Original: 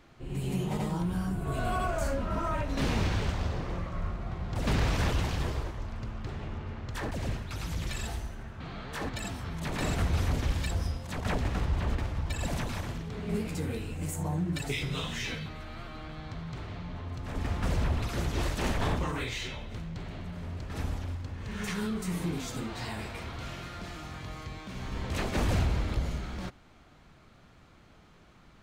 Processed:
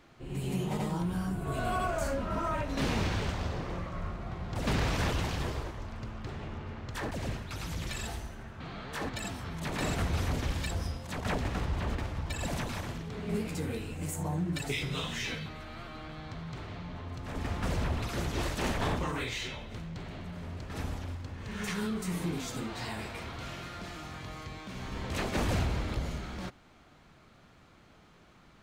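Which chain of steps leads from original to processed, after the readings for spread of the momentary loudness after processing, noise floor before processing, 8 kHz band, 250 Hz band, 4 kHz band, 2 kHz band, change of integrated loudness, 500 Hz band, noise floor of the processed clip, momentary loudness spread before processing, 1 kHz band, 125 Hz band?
11 LU, -57 dBFS, 0.0 dB, -1.0 dB, 0.0 dB, 0.0 dB, -1.5 dB, 0.0 dB, -59 dBFS, 11 LU, 0.0 dB, -2.5 dB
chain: low shelf 92 Hz -6 dB

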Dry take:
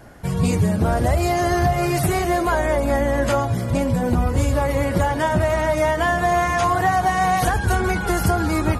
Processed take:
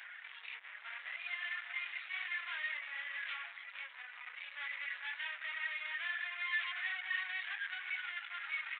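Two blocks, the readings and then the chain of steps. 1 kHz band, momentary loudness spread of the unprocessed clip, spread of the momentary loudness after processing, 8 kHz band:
-31.0 dB, 2 LU, 10 LU, under -40 dB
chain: limiter -14.5 dBFS, peak gain reduction 6.5 dB; flutter echo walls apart 11.4 m, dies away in 0.33 s; upward compressor, threshold -24 dBFS; chorus voices 4, 0.55 Hz, delay 25 ms, depth 4.6 ms; reverb removal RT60 1 s; speakerphone echo 0.19 s, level -14 dB; tube stage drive 32 dB, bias 0.55; downsampling 8000 Hz; ladder high-pass 1700 Hz, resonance 50%; gain +7 dB

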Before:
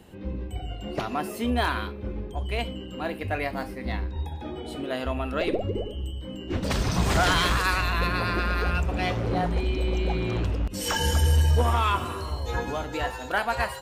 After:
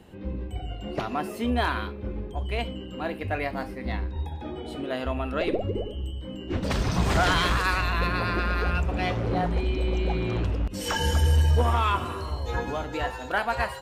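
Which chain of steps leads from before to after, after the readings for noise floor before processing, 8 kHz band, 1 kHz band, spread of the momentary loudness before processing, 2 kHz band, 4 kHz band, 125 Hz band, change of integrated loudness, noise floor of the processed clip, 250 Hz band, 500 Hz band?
-38 dBFS, -4.0 dB, 0.0 dB, 12 LU, -0.5 dB, -1.5 dB, 0.0 dB, -0.5 dB, -38 dBFS, 0.0 dB, 0.0 dB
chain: high shelf 5600 Hz -6.5 dB

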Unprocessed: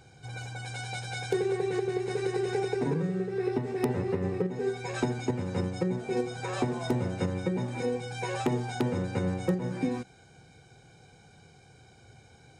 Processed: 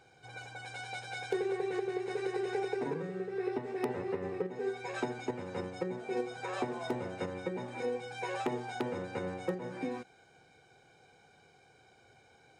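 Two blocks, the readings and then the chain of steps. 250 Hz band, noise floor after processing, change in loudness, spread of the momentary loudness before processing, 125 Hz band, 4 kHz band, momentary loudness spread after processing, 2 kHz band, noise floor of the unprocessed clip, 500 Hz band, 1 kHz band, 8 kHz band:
-8.0 dB, -63 dBFS, -6.0 dB, 6 LU, -14.0 dB, -5.5 dB, 6 LU, -3.0 dB, -57 dBFS, -4.5 dB, -2.5 dB, -9.0 dB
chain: tone controls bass -13 dB, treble -7 dB; gain -2.5 dB

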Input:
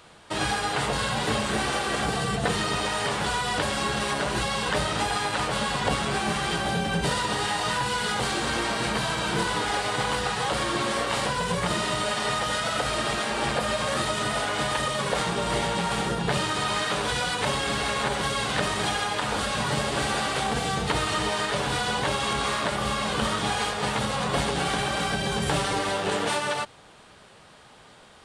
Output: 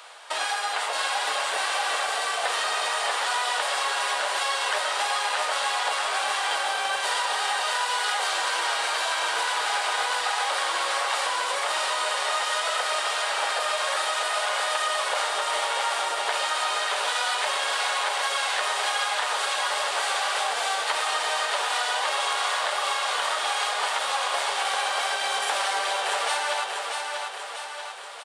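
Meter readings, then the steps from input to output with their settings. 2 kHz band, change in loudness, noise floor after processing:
+2.0 dB, +1.0 dB, -32 dBFS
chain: HPF 610 Hz 24 dB/oct; compressor 2:1, threshold -37 dBFS, peak gain reduction 8.5 dB; feedback echo 0.639 s, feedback 55%, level -4.5 dB; gain +7 dB

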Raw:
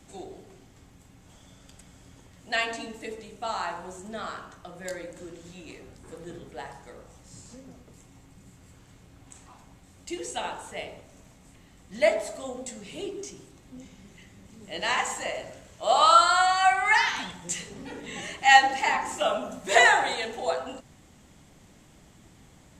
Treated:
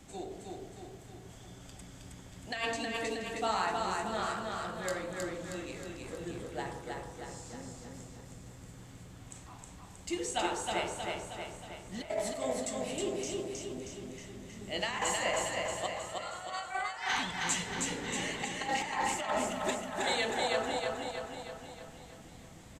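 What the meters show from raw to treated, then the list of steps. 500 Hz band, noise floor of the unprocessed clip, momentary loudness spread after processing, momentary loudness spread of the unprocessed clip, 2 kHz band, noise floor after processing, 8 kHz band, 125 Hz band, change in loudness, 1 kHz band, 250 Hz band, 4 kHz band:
-5.0 dB, -55 dBFS, 18 LU, 24 LU, -10.5 dB, -52 dBFS, -2.0 dB, +2.5 dB, -11.0 dB, -10.5 dB, +1.0 dB, -6.5 dB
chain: negative-ratio compressor -29 dBFS, ratio -0.5; on a send: feedback echo 0.316 s, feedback 56%, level -3 dB; on the sum: gain -5.5 dB

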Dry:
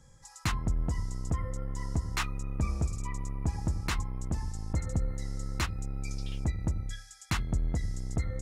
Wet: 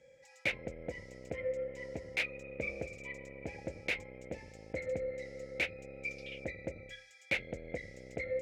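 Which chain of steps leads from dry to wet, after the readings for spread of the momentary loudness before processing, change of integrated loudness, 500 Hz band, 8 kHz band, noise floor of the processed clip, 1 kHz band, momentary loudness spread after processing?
6 LU, -5.0 dB, +8.0 dB, -14.5 dB, -60 dBFS, -12.5 dB, 11 LU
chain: self-modulated delay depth 0.18 ms; double band-pass 1100 Hz, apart 2.1 oct; gain +12.5 dB

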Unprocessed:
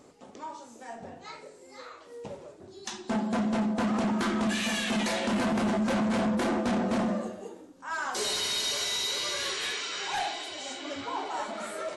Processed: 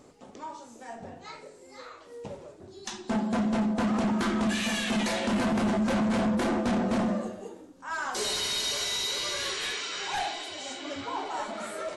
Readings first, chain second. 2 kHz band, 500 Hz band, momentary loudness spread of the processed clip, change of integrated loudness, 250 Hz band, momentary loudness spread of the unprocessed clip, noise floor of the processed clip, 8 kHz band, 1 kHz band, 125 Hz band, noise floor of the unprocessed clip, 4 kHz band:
0.0 dB, +0.5 dB, 18 LU, +0.5 dB, +1.0 dB, 17 LU, -51 dBFS, 0.0 dB, 0.0 dB, +1.5 dB, -52 dBFS, 0.0 dB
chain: low shelf 95 Hz +7.5 dB

